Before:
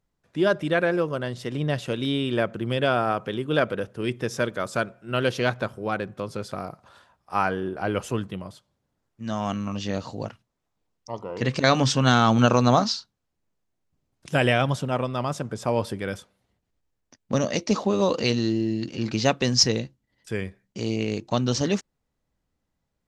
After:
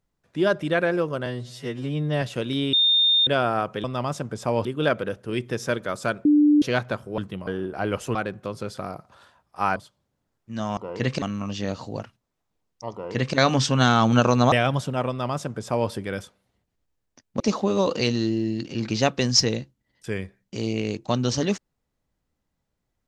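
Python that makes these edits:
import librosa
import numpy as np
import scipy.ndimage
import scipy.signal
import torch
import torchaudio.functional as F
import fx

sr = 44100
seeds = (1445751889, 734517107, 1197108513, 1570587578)

y = fx.edit(x, sr, fx.stretch_span(start_s=1.26, length_s=0.48, factor=2.0),
    fx.bleep(start_s=2.25, length_s=0.54, hz=3640.0, db=-15.5),
    fx.bleep(start_s=4.96, length_s=0.37, hz=296.0, db=-13.0),
    fx.swap(start_s=5.89, length_s=1.61, other_s=8.18, other_length_s=0.29),
    fx.duplicate(start_s=11.18, length_s=0.45, to_s=9.48),
    fx.cut(start_s=12.78, length_s=1.69),
    fx.duplicate(start_s=15.04, length_s=0.81, to_s=3.36),
    fx.cut(start_s=17.35, length_s=0.28), tone=tone)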